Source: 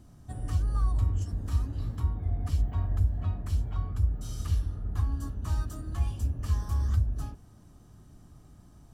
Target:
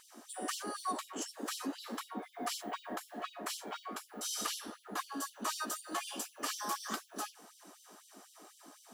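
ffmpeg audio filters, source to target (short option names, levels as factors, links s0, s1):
-af "highpass=51,asubboost=boost=10:cutoff=76,afftfilt=real='re*gte(b*sr/1024,200*pow(3000/200,0.5+0.5*sin(2*PI*4*pts/sr)))':imag='im*gte(b*sr/1024,200*pow(3000/200,0.5+0.5*sin(2*PI*4*pts/sr)))':win_size=1024:overlap=0.75,volume=3.55"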